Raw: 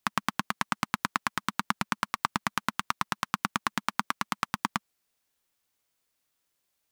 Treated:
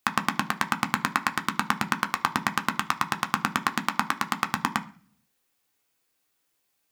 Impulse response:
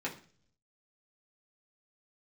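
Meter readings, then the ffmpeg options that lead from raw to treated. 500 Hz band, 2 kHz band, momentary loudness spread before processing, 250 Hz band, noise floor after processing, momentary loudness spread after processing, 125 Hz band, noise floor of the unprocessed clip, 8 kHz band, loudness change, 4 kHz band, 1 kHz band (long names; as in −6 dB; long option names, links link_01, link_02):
+3.5 dB, +4.5 dB, 2 LU, +4.5 dB, −75 dBFS, 2 LU, +3.5 dB, −79 dBFS, +3.0 dB, +4.0 dB, +3.0 dB, +4.0 dB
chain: -filter_complex "[0:a]asplit=2[link_01][link_02];[1:a]atrim=start_sample=2205,highshelf=frequency=11000:gain=8[link_03];[link_02][link_03]afir=irnorm=-1:irlink=0,volume=-4.5dB[link_04];[link_01][link_04]amix=inputs=2:normalize=0"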